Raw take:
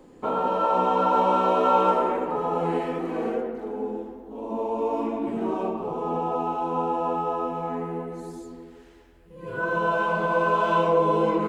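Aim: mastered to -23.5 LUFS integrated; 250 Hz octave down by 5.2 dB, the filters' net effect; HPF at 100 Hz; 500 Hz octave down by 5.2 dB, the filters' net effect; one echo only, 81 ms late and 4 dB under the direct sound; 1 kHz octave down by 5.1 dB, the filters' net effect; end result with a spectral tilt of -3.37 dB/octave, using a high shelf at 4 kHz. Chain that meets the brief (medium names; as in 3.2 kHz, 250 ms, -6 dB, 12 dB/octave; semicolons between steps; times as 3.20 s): high-pass 100 Hz; peaking EQ 250 Hz -5.5 dB; peaking EQ 500 Hz -3.5 dB; peaking EQ 1 kHz -5.5 dB; treble shelf 4 kHz +8 dB; delay 81 ms -4 dB; trim +4.5 dB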